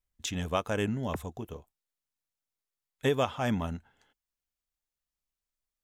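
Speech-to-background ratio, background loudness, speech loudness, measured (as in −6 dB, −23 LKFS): 12.0 dB, −44.0 LKFS, −32.0 LKFS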